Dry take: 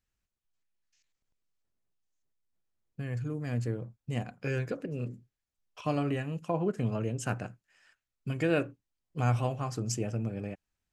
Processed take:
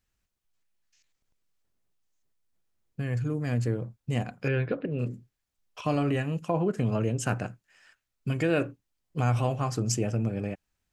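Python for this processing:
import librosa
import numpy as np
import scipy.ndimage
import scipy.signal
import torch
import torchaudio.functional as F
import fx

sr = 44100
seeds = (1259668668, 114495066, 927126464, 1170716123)

p1 = fx.steep_lowpass(x, sr, hz=3900.0, slope=48, at=(4.48, 4.99))
p2 = fx.over_compress(p1, sr, threshold_db=-31.0, ratio=-1.0)
y = p1 + F.gain(torch.from_numpy(p2), -3.0).numpy()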